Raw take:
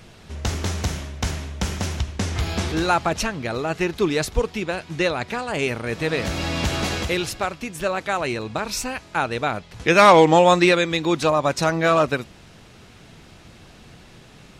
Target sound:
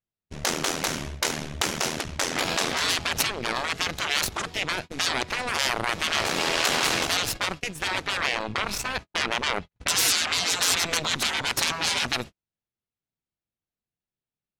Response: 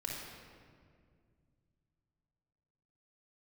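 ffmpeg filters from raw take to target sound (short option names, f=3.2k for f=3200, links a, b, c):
-filter_complex "[0:a]agate=range=-50dB:threshold=-33dB:ratio=16:detection=peak,asettb=1/sr,asplit=3[a][b][c];[a]atrim=end=8.014[d];[b]atrim=start=8.01:end=10.55,asetpts=PTS-STARTPTS,afade=t=in:d=0.004:c=qsin,afade=t=out:st=2.536:d=0.004:c=qsin,bass=f=250:g=3,treble=f=4k:g=-7[e];[c]atrim=start=10.546[f];[d][e]acrossfade=d=0.004:c1=hsin:c2=qsin[g];[g][f]acrossfade=d=0.004:c1=qsin:c2=hsin,aeval=exprs='0.794*(cos(1*acos(clip(val(0)/0.794,-1,1)))-cos(1*PI/2))+0.282*(cos(8*acos(clip(val(0)/0.794,-1,1)))-cos(8*PI/2))':c=same,afftfilt=real='re*lt(hypot(re,im),0.251)':imag='im*lt(hypot(re,im),0.251)':win_size=1024:overlap=0.75"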